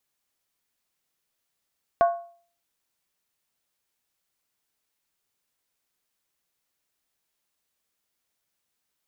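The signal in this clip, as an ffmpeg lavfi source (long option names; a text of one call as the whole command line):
ffmpeg -f lavfi -i "aevalsrc='0.224*pow(10,-3*t/0.47)*sin(2*PI*688*t)+0.0794*pow(10,-3*t/0.372)*sin(2*PI*1096.7*t)+0.0282*pow(10,-3*t/0.322)*sin(2*PI*1469.6*t)+0.01*pow(10,-3*t/0.31)*sin(2*PI*1579.6*t)+0.00355*pow(10,-3*t/0.289)*sin(2*PI*1825.3*t)':duration=0.63:sample_rate=44100" out.wav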